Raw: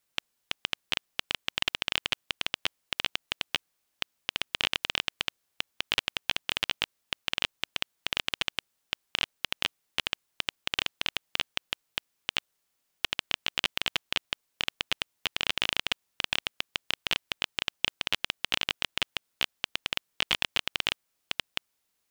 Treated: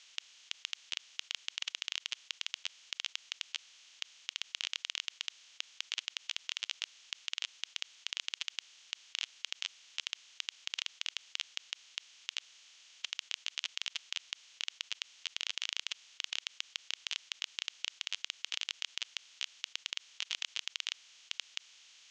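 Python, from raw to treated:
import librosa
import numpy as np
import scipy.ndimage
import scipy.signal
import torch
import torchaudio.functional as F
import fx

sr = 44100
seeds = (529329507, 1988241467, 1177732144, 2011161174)

y = fx.bin_compress(x, sr, power=0.4)
y = fx.bandpass_q(y, sr, hz=6600.0, q=3.7)
y = fx.air_absorb(y, sr, metres=140.0)
y = F.gain(torch.from_numpy(y), 6.5).numpy()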